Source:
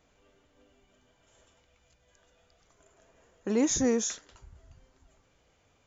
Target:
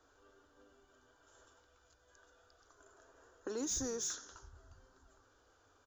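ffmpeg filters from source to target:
ffmpeg -i in.wav -filter_complex "[0:a]firequalizer=gain_entry='entry(100,0);entry(180,-22);entry(270,-2);entry(400,-2);entry(610,-9);entry(1500,0);entry(2100,-21);entry(3500,-8);entry(5000,-3)':delay=0.05:min_phase=1,acrossover=split=140|3000[link_01][link_02][link_03];[link_02]acompressor=threshold=-45dB:ratio=3[link_04];[link_01][link_04][link_03]amix=inputs=3:normalize=0,asplit=2[link_05][link_06];[link_06]asplit=4[link_07][link_08][link_09][link_10];[link_07]adelay=88,afreqshift=-71,volume=-19dB[link_11];[link_08]adelay=176,afreqshift=-142,volume=-24.4dB[link_12];[link_09]adelay=264,afreqshift=-213,volume=-29.7dB[link_13];[link_10]adelay=352,afreqshift=-284,volume=-35.1dB[link_14];[link_11][link_12][link_13][link_14]amix=inputs=4:normalize=0[link_15];[link_05][link_15]amix=inputs=2:normalize=0,asplit=2[link_16][link_17];[link_17]highpass=frequency=720:poles=1,volume=13dB,asoftclip=type=tanh:threshold=-25dB[link_18];[link_16][link_18]amix=inputs=2:normalize=0,lowpass=frequency=3000:poles=1,volume=-6dB" out.wav

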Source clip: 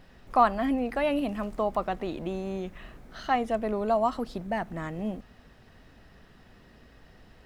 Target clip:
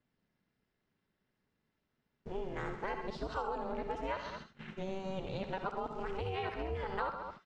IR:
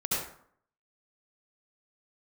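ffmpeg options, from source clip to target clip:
-filter_complex "[0:a]areverse,lowpass=frequency=6700:width=0.5412,lowpass=frequency=6700:width=1.3066,aecho=1:1:61|133|213:0.224|0.224|0.126,agate=range=-26dB:threshold=-43dB:ratio=16:detection=peak,aeval=exprs='val(0)*sin(2*PI*190*n/s)':channel_layout=same,acompressor=threshold=-34dB:ratio=6,asplit=2[link_01][link_02];[link_02]highpass=930[link_03];[1:a]atrim=start_sample=2205,atrim=end_sample=3969[link_04];[link_03][link_04]afir=irnorm=-1:irlink=0,volume=-9dB[link_05];[link_01][link_05]amix=inputs=2:normalize=0"

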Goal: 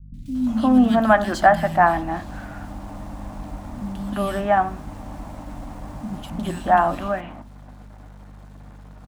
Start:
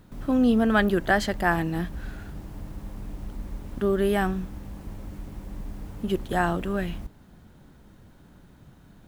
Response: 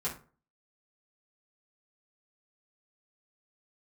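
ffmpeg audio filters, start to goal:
-filter_complex "[0:a]firequalizer=gain_entry='entry(130,0);entry(270,11);entry(430,-10);entry(610,14);entry(1000,12);entry(1500,6);entry(4900,4);entry(8100,5);entry(13000,-3)':delay=0.05:min_phase=1,asplit=2[link_01][link_02];[link_02]acompressor=threshold=-36dB:ratio=6,volume=2.5dB[link_03];[link_01][link_03]amix=inputs=2:normalize=0,aeval=exprs='sgn(val(0))*max(abs(val(0))-0.00891,0)':channel_layout=same,aeval=exprs='val(0)+0.0141*(sin(2*PI*50*n/s)+sin(2*PI*2*50*n/s)/2+sin(2*PI*3*50*n/s)/3+sin(2*PI*4*50*n/s)/4+sin(2*PI*5*50*n/s)/5)':channel_layout=same,acrossover=split=200|2800[link_04][link_05][link_06];[link_06]adelay=140[link_07];[link_05]adelay=350[link_08];[link_04][link_08][link_07]amix=inputs=3:normalize=0,asplit=2[link_09][link_10];[1:a]atrim=start_sample=2205[link_11];[link_10][link_11]afir=irnorm=-1:irlink=0,volume=-12.5dB[link_12];[link_09][link_12]amix=inputs=2:normalize=0,volume=-4dB"

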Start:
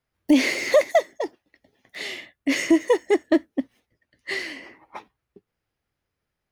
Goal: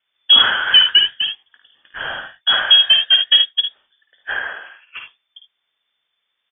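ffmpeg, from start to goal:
ffmpeg -i in.wav -filter_complex "[0:a]asettb=1/sr,asplit=3[link_01][link_02][link_03];[link_01]atrim=end=4.314[link_04];[link_02]atrim=start=4.31:end=4.97,asetpts=PTS-STARTPTS,afade=type=in:duration=0.004:curve=qsin,afade=type=out:start_time=0.656:duration=0.004:curve=qsin,highpass=frequency=1300:poles=1[link_05];[link_03]atrim=start=4.966[link_06];[link_04][link_05]acrossfade=duration=0.004:curve1=hsin:curve2=qsin[link_07];[link_07][link_06]acrossfade=duration=0.004:curve1=qsin:curve2=hsin,asplit=2[link_08][link_09];[link_09]asoftclip=type=tanh:threshold=-18dB,volume=-7dB[link_10];[link_08][link_10]amix=inputs=2:normalize=0,aecho=1:1:53|74:0.447|0.335,lowpass=frequency=3100:width_type=q:width=0.5098,lowpass=frequency=3100:width_type=q:width=0.6013,lowpass=frequency=3100:width_type=q:width=0.9,lowpass=frequency=3100:width_type=q:width=2.563,afreqshift=-3600,volume=4dB" out.wav

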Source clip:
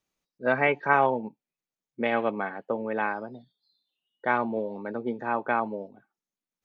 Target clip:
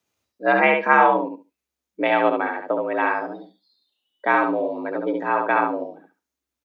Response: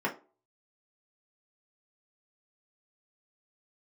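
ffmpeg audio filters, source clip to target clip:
-af "aecho=1:1:70|140|210:0.631|0.101|0.0162,afreqshift=65,volume=5.5dB"

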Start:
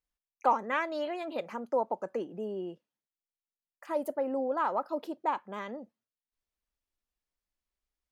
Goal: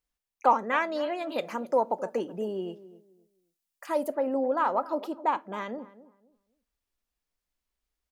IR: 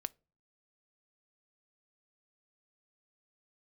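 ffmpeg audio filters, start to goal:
-filter_complex "[0:a]asettb=1/sr,asplit=3[link_01][link_02][link_03];[link_01]atrim=end=1.294[link_04];[link_02]atrim=start=1.29:end=4.04,asetpts=PTS-STARTPTS,afade=type=in:duration=0.004:curve=qsin,afade=type=out:start_time=2.746:duration=0.004:curve=qsin,highshelf=frequency=3500:gain=8.5[link_05];[link_03]atrim=start=4.036[link_06];[link_04][link_05]acrossfade=duration=0.004:curve1=hsin:curve2=qsin[link_07];[link_07][link_06]acrossfade=duration=0.004:curve1=qsin:curve2=hsin,asplit=2[link_08][link_09];[link_09]adelay=262,lowpass=frequency=1000:poles=1,volume=-16dB,asplit=2[link_10][link_11];[link_11]adelay=262,lowpass=frequency=1000:poles=1,volume=0.27,asplit=2[link_12][link_13];[link_13]adelay=262,lowpass=frequency=1000:poles=1,volume=0.27[link_14];[link_08][link_10][link_12][link_14]amix=inputs=4:normalize=0[link_15];[1:a]atrim=start_sample=2205[link_16];[link_15][link_16]afir=irnorm=-1:irlink=0,volume=5.5dB"

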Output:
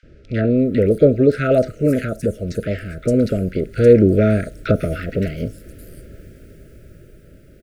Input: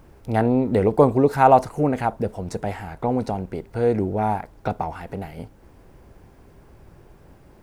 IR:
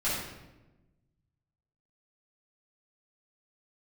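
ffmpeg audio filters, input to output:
-filter_complex "[0:a]dynaudnorm=framelen=210:gausssize=17:maxgain=11.5dB,asuperstop=centerf=910:order=20:qfactor=1.5,acrossover=split=1300|5800[link_01][link_02][link_03];[link_01]adelay=30[link_04];[link_03]adelay=570[link_05];[link_04][link_02][link_05]amix=inputs=3:normalize=0,volume=3.5dB"

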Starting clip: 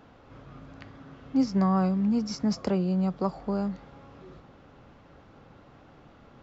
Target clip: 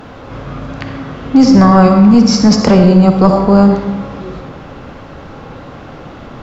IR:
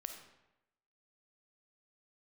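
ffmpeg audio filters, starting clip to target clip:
-filter_complex "[1:a]atrim=start_sample=2205,asetrate=36603,aresample=44100[link_01];[0:a][link_01]afir=irnorm=-1:irlink=0,apsyclip=25.5dB,volume=-1.5dB"

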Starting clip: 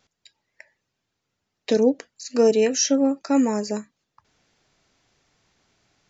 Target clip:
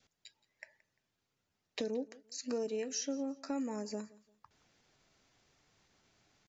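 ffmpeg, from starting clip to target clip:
ffmpeg -i in.wav -af "adynamicequalizer=threshold=0.0126:dfrequency=960:dqfactor=2.9:tfrequency=960:tqfactor=2.9:attack=5:release=100:ratio=0.375:range=1.5:mode=cutabove:tftype=bell,acompressor=threshold=-34dB:ratio=3,atempo=0.94,aecho=1:1:173|346:0.0841|0.0252,volume=-5dB" out.wav

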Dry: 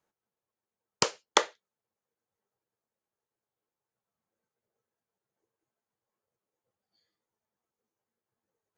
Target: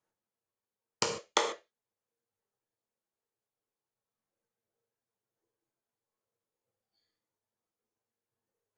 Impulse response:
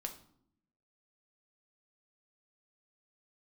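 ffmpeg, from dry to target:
-filter_complex "[0:a]asettb=1/sr,asplit=3[link_01][link_02][link_03];[link_01]atrim=end=1.034[link_04];[link_02]atrim=start=1.03:end=1.44,asetpts=PTS-STARTPTS,afade=type=in:duration=0.004:curve=qsin,afade=type=out:start_time=0.406:duration=0.004:curve=qsin,bandreject=frequency=1600:width=12[link_05];[link_03]atrim=start=1.436[link_06];[link_04][link_05]acrossfade=duration=0.004:curve1=hsin:curve2=qsin[link_07];[link_07][link_06]acrossfade=duration=0.004:curve1=qsin:curve2=hsin[link_08];[1:a]atrim=start_sample=2205,atrim=end_sample=3528,asetrate=22932,aresample=44100[link_09];[link_08][link_09]afir=irnorm=-1:irlink=0,volume=-5.5dB"

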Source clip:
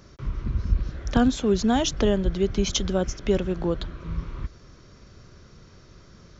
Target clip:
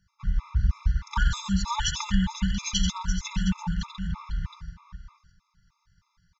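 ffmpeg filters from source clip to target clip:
ffmpeg -i in.wav -filter_complex "[0:a]agate=range=-17dB:threshold=-44dB:ratio=16:detection=peak,afftfilt=real='re*(1-between(b*sr/4096,200,860))':imag='im*(1-between(b*sr/4096,200,860))':win_size=4096:overlap=0.75,acrossover=split=140|1000[link_01][link_02][link_03];[link_02]acontrast=83[link_04];[link_01][link_04][link_03]amix=inputs=3:normalize=0,aecho=1:1:3.4:0.57,aecho=1:1:85|88|134|496|713:0.355|0.422|0.376|0.251|0.237,afftfilt=real='re*gt(sin(2*PI*3.2*pts/sr)*(1-2*mod(floor(b*sr/1024/680),2)),0)':imag='im*gt(sin(2*PI*3.2*pts/sr)*(1-2*mod(floor(b*sr/1024/680),2)),0)':win_size=1024:overlap=0.75" out.wav

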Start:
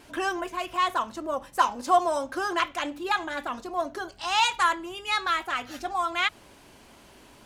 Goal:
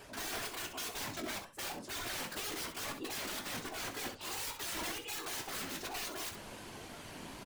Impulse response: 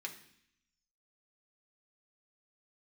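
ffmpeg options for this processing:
-af "areverse,acompressor=threshold=-39dB:ratio=5,areverse,aeval=exprs='(mod(94.4*val(0)+1,2)-1)/94.4':channel_layout=same,afftfilt=real='hypot(re,im)*cos(2*PI*random(0))':imag='hypot(re,im)*sin(2*PI*random(1))':win_size=512:overlap=0.75,flanger=delay=6.9:depth=5.6:regen=73:speed=2:shape=sinusoidal,aecho=1:1:19|65:0.316|0.335,volume=14dB"

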